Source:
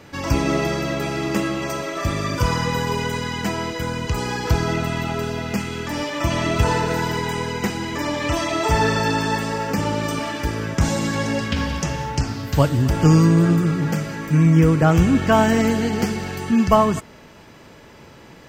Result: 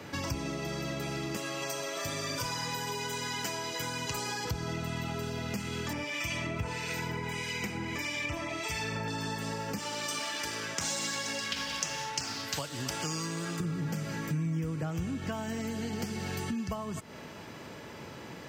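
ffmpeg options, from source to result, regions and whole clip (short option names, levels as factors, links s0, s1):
-filter_complex "[0:a]asettb=1/sr,asplit=3[s0][s1][s2];[s0]atrim=end=1.364[s3];[s1]atrim=start=1.36:end=4.45,asetpts=PTS-STARTPTS,afade=t=in:d=0.004:c=qsin,afade=t=out:st=3.086:d=0.004:c=qsin,bass=f=250:g=-11,treble=f=4000:g=3,aecho=1:1:7.3:0.53,atrim=end_sample=136269[s4];[s2]atrim=start=4.446[s5];[s3][s4]acrossfade=d=0.004:c1=hsin:c2=qsin[s6];[s6][s5]acrossfade=d=0.004:c1=qsin:c2=hsin,asettb=1/sr,asplit=3[s7][s8][s9];[s7]atrim=end=5.934[s10];[s8]atrim=start=5.93:end=9.08,asetpts=PTS-STARTPTS,afade=t=in:d=0.004:c=qsin,afade=t=out:st=3.146:d=0.004:c=qsin,equalizer=f=2300:w=4.1:g=12,bandreject=f=4100:w=21,acrossover=split=1900[s11][s12];[s11]aeval=exprs='val(0)*(1-0.7/2+0.7/2*cos(2*PI*1.6*n/s))':c=same[s13];[s12]aeval=exprs='val(0)*(1-0.7/2-0.7/2*cos(2*PI*1.6*n/s))':c=same[s14];[s13][s14]amix=inputs=2:normalize=0[s15];[s9]atrim=start=9.076[s16];[s10][s15]acrossfade=d=0.004:c1=hsin:c2=qsin[s17];[s17][s16]acrossfade=d=0.004:c1=qsin:c2=hsin,asettb=1/sr,asplit=3[s18][s19][s20];[s18]atrim=end=9.784[s21];[s19]atrim=start=9.78:end=13.6,asetpts=PTS-STARTPTS,afade=t=in:d=0.004:c=qsin,afade=t=out:st=3.816:d=0.004:c=qsin,highshelf=f=4000:g=7,adynamicsmooth=sensitivity=7:basefreq=6800,highpass=f=960:p=1[s22];[s20]atrim=start=13.596[s23];[s21][s22]acrossfade=d=0.004:c1=hsin:c2=qsin[s24];[s24][s23]acrossfade=d=0.004:c1=qsin:c2=hsin,acompressor=threshold=0.0398:ratio=6,highpass=84,acrossover=split=160|3000[s25][s26][s27];[s26]acompressor=threshold=0.01:ratio=2[s28];[s25][s28][s27]amix=inputs=3:normalize=0"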